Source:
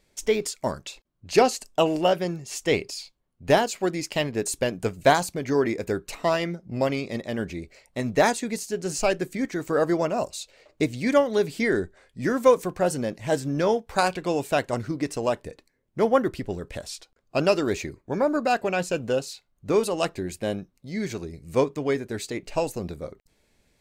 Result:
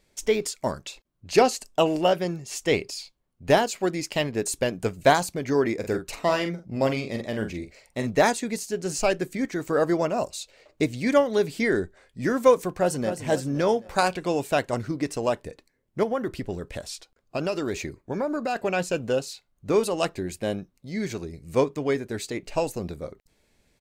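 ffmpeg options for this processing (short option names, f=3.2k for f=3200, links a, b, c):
-filter_complex "[0:a]asettb=1/sr,asplit=3[a][b][c];[a]atrim=end=5.754[d];[b]atrim=start=5.75:end=8.07,asetpts=PTS-STARTPTS,afade=t=in:d=0.004:c=qsin,afade=t=out:st=2.316:d=0.004:c=qsin,asplit=2[e][f];[f]adelay=45,volume=-8dB[g];[e][g]amix=inputs=2:normalize=0,atrim=end_sample=102312[h];[c]atrim=start=8.066[i];[d][h]acrossfade=d=0.004:c1=hsin:c2=qsin[j];[j][i]acrossfade=d=0.004:c1=qsin:c2=hsin,asplit=2[k][l];[l]afade=t=in:st=12.68:d=0.01,afade=t=out:st=13.11:d=0.01,aecho=0:1:260|520|780|1040|1300:0.375837|0.169127|0.0761071|0.0342482|0.0154117[m];[k][m]amix=inputs=2:normalize=0,asettb=1/sr,asplit=3[n][o][p];[n]atrim=end=16.034[q];[o]atrim=start=16.03:end=18.56,asetpts=PTS-STARTPTS,afade=t=in:d=0.004:c=qsin,afade=t=out:st=2.526:d=0.004:c=qsin,acompressor=threshold=-24dB:ratio=3:attack=3.2:release=140:knee=1:detection=peak[r];[p]atrim=start=18.556[s];[q][r]acrossfade=d=0.004:c1=hsin:c2=qsin[t];[t][s]acrossfade=d=0.004:c1=qsin:c2=hsin"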